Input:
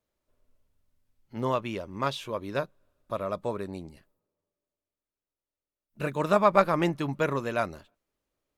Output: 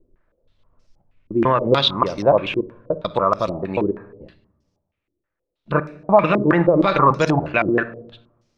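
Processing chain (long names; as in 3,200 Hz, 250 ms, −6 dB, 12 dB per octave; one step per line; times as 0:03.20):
slices reordered back to front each 145 ms, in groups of 3
rectangular room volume 1,900 cubic metres, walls furnished, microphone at 0.76 metres
boost into a limiter +17.5 dB
low-pass on a step sequencer 6.3 Hz 340–5,500 Hz
level −7.5 dB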